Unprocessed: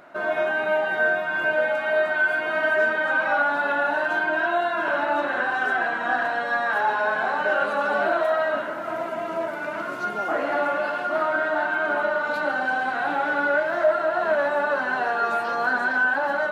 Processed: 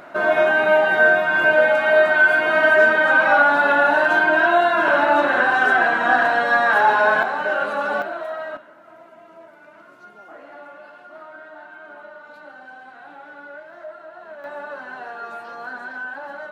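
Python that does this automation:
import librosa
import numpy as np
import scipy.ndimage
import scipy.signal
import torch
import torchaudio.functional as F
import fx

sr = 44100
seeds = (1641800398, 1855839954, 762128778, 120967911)

y = fx.gain(x, sr, db=fx.steps((0.0, 7.0), (7.23, 0.5), (8.02, -7.0), (8.57, -17.0), (14.44, -10.0)))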